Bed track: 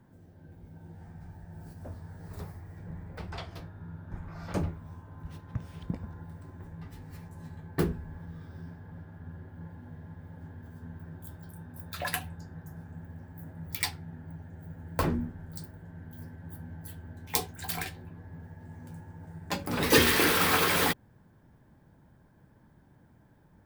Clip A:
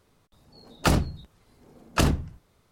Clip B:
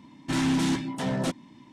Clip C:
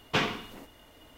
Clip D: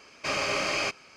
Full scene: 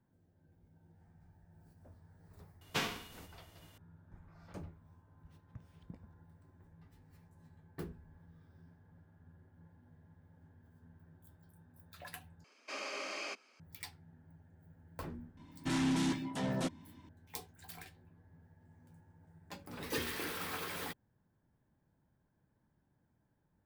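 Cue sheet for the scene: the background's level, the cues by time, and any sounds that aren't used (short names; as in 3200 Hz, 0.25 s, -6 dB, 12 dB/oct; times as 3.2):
bed track -16.5 dB
2.61 add C -8.5 dB + spectral whitening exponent 0.6
12.44 replace with D -13.5 dB + steep high-pass 210 Hz 96 dB/oct
15.37 add B -7.5 dB
not used: A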